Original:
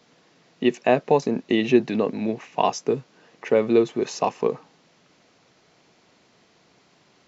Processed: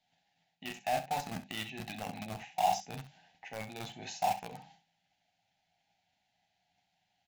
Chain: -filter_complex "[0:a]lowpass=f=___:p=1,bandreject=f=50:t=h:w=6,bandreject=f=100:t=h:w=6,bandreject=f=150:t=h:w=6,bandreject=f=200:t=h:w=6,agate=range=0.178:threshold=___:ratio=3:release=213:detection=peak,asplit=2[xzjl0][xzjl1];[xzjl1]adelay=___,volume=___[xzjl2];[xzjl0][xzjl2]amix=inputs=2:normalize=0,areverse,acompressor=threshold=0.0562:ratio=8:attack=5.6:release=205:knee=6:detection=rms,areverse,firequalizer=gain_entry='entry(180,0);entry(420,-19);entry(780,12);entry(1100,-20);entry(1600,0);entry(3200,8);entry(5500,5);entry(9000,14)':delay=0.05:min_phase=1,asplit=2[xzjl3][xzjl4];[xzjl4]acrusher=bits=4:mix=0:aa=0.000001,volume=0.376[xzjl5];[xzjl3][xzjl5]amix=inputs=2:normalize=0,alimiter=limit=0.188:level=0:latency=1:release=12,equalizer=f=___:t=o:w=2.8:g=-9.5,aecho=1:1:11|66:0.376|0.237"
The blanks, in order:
1200, 0.00282, 36, 0.316, 310